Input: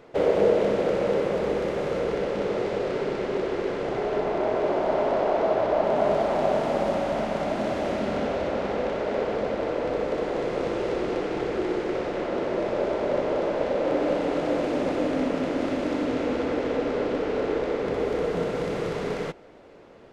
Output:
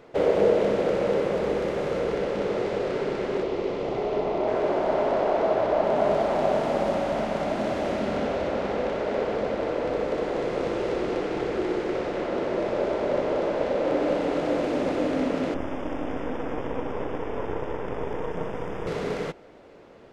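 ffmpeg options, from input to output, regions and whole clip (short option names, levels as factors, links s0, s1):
-filter_complex "[0:a]asettb=1/sr,asplit=3[s0][s1][s2];[s0]atrim=end=3.434[s3];[s1]atrim=start=3.43:end=4.48,asetpts=PTS-STARTPTS,afade=t=in:d=0.004:c=qsin,afade=t=out:st=1.046:d=0.004:c=qsin,lowpass=6500,equalizer=f=1600:t=o:w=0.46:g=-9[s4];[s2]atrim=start=4.476[s5];[s3][s4]acrossfade=d=0.004:c1=hsin:c2=qsin[s6];[s6][s5]acrossfade=d=0.004:c1=qsin:c2=hsin,asettb=1/sr,asplit=3[s7][s8][s9];[s7]atrim=end=15.544[s10];[s8]atrim=start=15.54:end=18.87,asetpts=PTS-STARTPTS,afade=t=in:d=0.004:c=qsin,afade=t=out:st=3.326:d=0.004:c=qsin,aeval=exprs='max(val(0),0)':c=same,asuperstop=centerf=4200:order=12:qfactor=3.5,highshelf=f=3700:g=-10.5[s11];[s9]atrim=start=18.866[s12];[s10][s11]acrossfade=d=0.004:c1=hsin:c2=qsin[s13];[s13][s12]acrossfade=d=0.004:c1=qsin:c2=hsin"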